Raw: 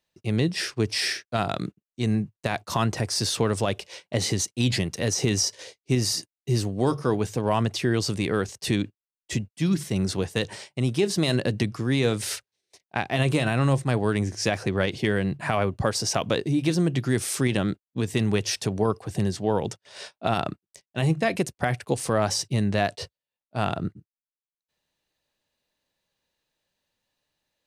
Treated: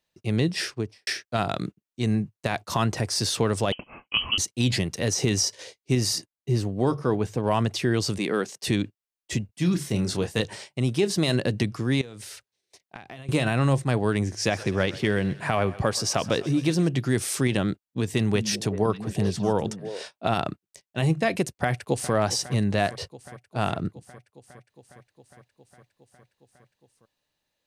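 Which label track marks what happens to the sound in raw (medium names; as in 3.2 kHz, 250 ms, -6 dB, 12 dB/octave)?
0.610000	1.070000	studio fade out
3.720000	4.380000	frequency inversion carrier 3.1 kHz
6.180000	7.440000	treble shelf 3 kHz -8 dB
8.180000	8.660000	high-pass 180 Hz 24 dB/octave
9.460000	10.410000	doubling 28 ms -7.5 dB
12.010000	13.290000	compression 10:1, threshold -37 dBFS
14.350000	16.890000	thinning echo 127 ms, feedback 67%, level -17 dB
18.120000	20.020000	repeats whose band climbs or falls 194 ms, band-pass from 180 Hz, each repeat 1.4 oct, level -6 dB
21.570000	22.130000	echo throw 410 ms, feedback 80%, level -15.5 dB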